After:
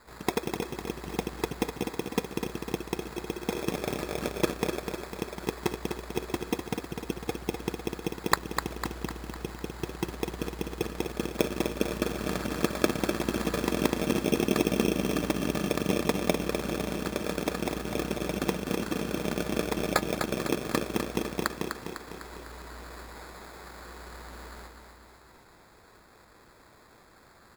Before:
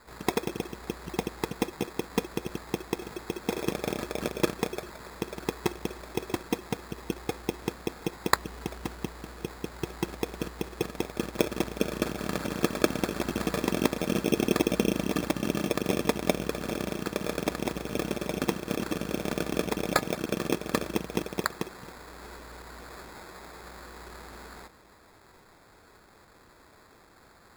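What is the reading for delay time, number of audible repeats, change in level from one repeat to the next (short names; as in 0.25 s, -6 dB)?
0.251 s, 5, -5.5 dB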